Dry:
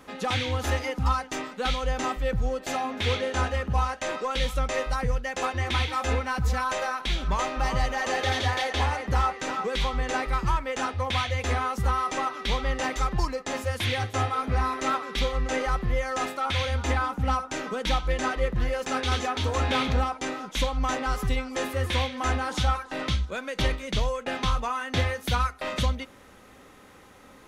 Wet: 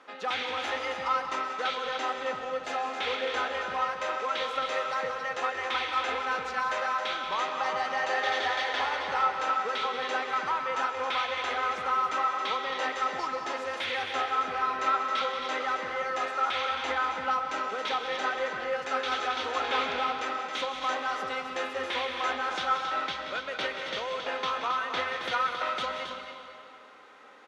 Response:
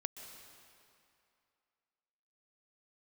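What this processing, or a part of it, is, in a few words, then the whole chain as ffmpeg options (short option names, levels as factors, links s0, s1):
station announcement: -filter_complex "[0:a]highpass=480,lowpass=4300,equalizer=f=1400:t=o:w=0.2:g=5.5,aecho=1:1:180.8|271.1:0.282|0.398[s0];[1:a]atrim=start_sample=2205[s1];[s0][s1]afir=irnorm=-1:irlink=0"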